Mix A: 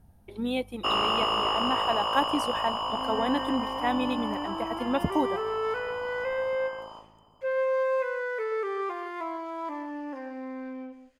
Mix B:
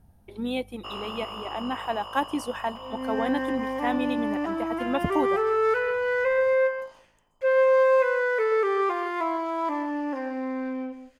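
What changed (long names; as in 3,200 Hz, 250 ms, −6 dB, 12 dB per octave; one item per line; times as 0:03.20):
first sound −11.5 dB
second sound +7.0 dB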